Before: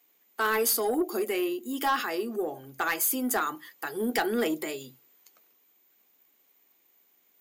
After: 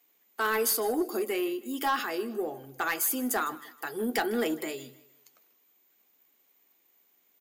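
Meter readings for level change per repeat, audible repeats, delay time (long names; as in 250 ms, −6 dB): −8.5 dB, 2, 156 ms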